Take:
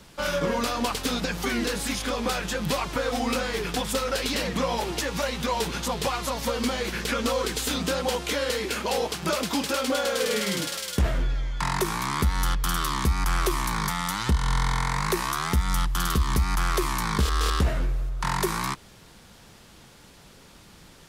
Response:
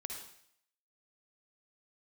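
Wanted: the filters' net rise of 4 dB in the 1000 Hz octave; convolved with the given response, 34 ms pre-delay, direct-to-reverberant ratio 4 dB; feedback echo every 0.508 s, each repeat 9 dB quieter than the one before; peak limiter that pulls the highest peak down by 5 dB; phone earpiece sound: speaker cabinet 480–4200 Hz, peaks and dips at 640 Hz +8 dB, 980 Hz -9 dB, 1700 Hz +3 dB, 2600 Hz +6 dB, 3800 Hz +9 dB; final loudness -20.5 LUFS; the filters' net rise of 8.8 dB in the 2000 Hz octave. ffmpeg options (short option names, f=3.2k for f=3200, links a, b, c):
-filter_complex "[0:a]equalizer=f=1k:t=o:g=7,equalizer=f=2k:t=o:g=5,alimiter=limit=-14.5dB:level=0:latency=1,aecho=1:1:508|1016|1524|2032:0.355|0.124|0.0435|0.0152,asplit=2[a][b];[1:a]atrim=start_sample=2205,adelay=34[c];[b][c]afir=irnorm=-1:irlink=0,volume=-2.5dB[d];[a][d]amix=inputs=2:normalize=0,highpass=480,equalizer=f=640:t=q:w=4:g=8,equalizer=f=980:t=q:w=4:g=-9,equalizer=f=1.7k:t=q:w=4:g=3,equalizer=f=2.6k:t=q:w=4:g=6,equalizer=f=3.8k:t=q:w=4:g=9,lowpass=f=4.2k:w=0.5412,lowpass=f=4.2k:w=1.3066,volume=2.5dB"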